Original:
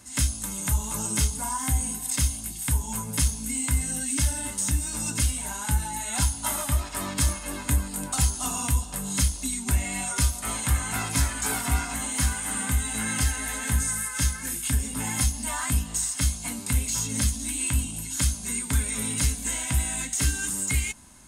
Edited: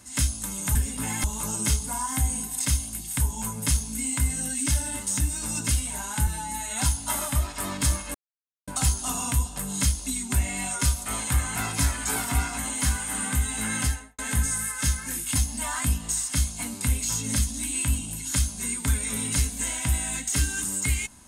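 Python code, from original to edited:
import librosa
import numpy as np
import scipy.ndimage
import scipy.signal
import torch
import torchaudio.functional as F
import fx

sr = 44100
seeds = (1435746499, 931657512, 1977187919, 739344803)

y = fx.studio_fade_out(x, sr, start_s=13.17, length_s=0.38)
y = fx.edit(y, sr, fx.stretch_span(start_s=5.78, length_s=0.29, factor=1.5),
    fx.silence(start_s=7.51, length_s=0.53),
    fx.move(start_s=14.72, length_s=0.49, to_s=0.75), tone=tone)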